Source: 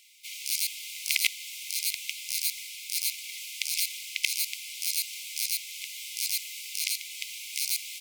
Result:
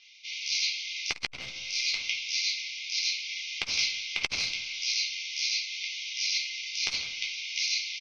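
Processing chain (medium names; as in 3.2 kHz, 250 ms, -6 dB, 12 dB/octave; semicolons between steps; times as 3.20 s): one-sided wavefolder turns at -11.5 dBFS; steep low-pass 6.1 kHz 96 dB/octave; feedback comb 130 Hz, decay 1.7 s, mix 50%; speakerphone echo 160 ms, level -15 dB; simulated room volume 470 m³, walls furnished, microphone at 3.8 m; transformer saturation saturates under 1.9 kHz; trim +6 dB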